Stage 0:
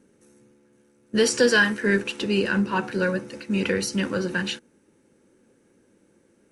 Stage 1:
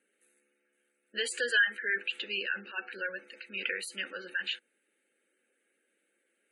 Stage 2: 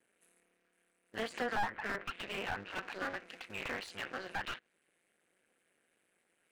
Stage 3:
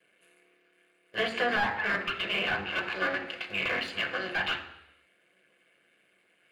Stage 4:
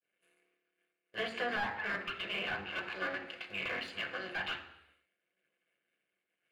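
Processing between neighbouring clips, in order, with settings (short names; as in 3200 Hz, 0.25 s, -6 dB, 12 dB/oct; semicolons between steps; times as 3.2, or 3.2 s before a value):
HPF 910 Hz 12 dB/oct; spectral gate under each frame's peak -20 dB strong; fixed phaser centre 2400 Hz, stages 4; gain -2 dB
cycle switcher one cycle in 2, muted; treble ducked by the level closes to 1500 Hz, closed at -30 dBFS; slew limiter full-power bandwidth 24 Hz; gain +3 dB
reverb RT60 0.85 s, pre-delay 3 ms, DRR 4.5 dB
expander -59 dBFS; gain -7.5 dB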